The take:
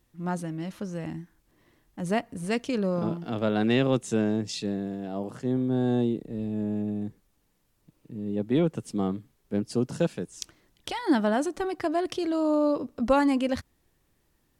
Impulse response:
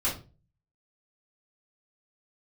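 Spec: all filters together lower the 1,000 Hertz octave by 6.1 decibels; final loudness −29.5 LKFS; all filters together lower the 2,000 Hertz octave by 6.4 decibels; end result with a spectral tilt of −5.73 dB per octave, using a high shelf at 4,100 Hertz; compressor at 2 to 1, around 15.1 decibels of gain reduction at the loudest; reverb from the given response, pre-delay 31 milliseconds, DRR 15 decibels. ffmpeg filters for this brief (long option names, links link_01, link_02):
-filter_complex "[0:a]equalizer=frequency=1000:width_type=o:gain=-7.5,equalizer=frequency=2000:width_type=o:gain=-7.5,highshelf=frequency=4100:gain=6,acompressor=threshold=-48dB:ratio=2,asplit=2[link_01][link_02];[1:a]atrim=start_sample=2205,adelay=31[link_03];[link_02][link_03]afir=irnorm=-1:irlink=0,volume=-23.5dB[link_04];[link_01][link_04]amix=inputs=2:normalize=0,volume=12.5dB"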